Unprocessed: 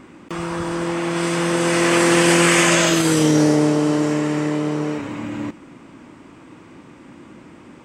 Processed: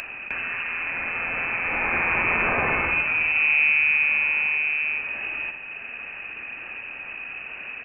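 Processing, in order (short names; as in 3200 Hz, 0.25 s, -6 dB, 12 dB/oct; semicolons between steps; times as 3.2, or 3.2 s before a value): feedback echo 60 ms, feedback 49%, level -8 dB; inverted band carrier 2800 Hz; upward compressor, threshold -16 dBFS; gain -7 dB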